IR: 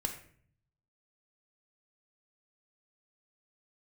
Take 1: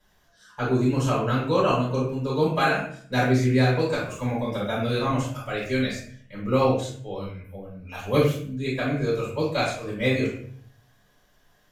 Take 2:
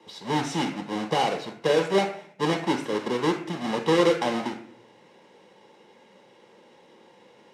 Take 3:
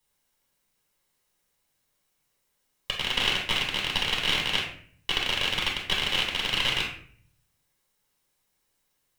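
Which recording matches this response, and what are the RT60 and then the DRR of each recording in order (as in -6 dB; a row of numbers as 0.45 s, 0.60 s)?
2; 0.55 s, 0.55 s, 0.55 s; -9.0 dB, 2.5 dB, -3.5 dB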